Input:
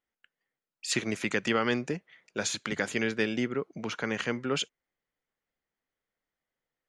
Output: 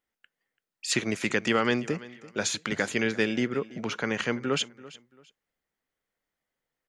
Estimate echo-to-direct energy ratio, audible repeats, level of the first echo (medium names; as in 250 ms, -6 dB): -18.5 dB, 2, -19.0 dB